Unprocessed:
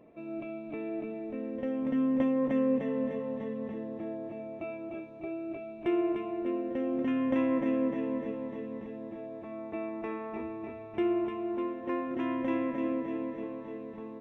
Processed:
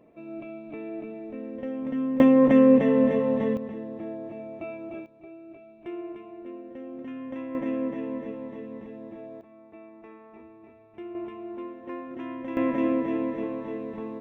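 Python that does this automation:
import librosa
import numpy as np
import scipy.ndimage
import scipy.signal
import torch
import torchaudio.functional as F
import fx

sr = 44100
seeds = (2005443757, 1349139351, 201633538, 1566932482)

y = fx.gain(x, sr, db=fx.steps((0.0, 0.0), (2.2, 11.0), (3.57, 2.0), (5.06, -8.0), (7.55, 0.0), (9.41, -11.0), (11.15, -4.0), (12.57, 7.0)))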